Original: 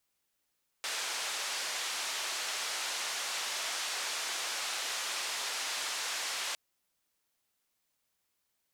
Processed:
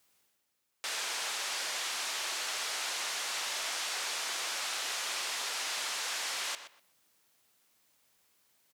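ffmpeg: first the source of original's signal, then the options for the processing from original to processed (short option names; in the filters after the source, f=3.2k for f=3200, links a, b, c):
-f lavfi -i "anoisesrc=c=white:d=5.71:r=44100:seed=1,highpass=f=650,lowpass=f=6400,volume=-25.6dB"
-filter_complex "[0:a]highpass=88,areverse,acompressor=mode=upward:threshold=-60dB:ratio=2.5,areverse,asplit=2[a][b];[b]adelay=123,lowpass=f=3.5k:p=1,volume=-10dB,asplit=2[c][d];[d]adelay=123,lowpass=f=3.5k:p=1,volume=0.22,asplit=2[e][f];[f]adelay=123,lowpass=f=3.5k:p=1,volume=0.22[g];[a][c][e][g]amix=inputs=4:normalize=0"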